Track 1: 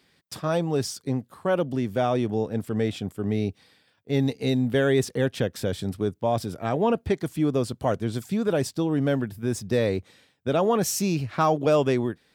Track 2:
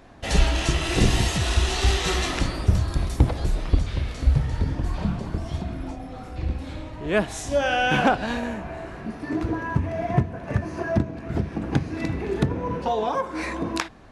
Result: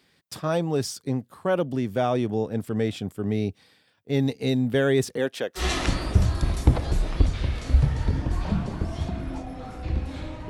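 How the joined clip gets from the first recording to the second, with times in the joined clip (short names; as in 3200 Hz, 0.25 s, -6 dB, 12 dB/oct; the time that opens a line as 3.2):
track 1
5.16–5.65 HPF 220 Hz -> 680 Hz
5.6 switch to track 2 from 2.13 s, crossfade 0.10 s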